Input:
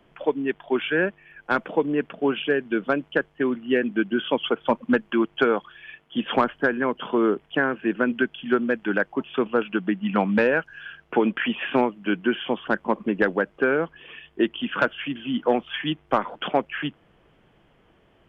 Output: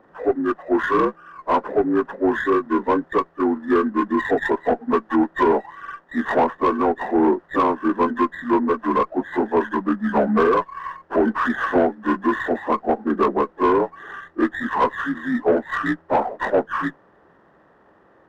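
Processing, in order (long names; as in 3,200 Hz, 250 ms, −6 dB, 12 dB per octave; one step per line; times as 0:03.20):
partials spread apart or drawn together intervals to 79%
mid-hump overdrive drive 17 dB, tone 1,200 Hz, clips at −8.5 dBFS
windowed peak hold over 3 samples
level +2 dB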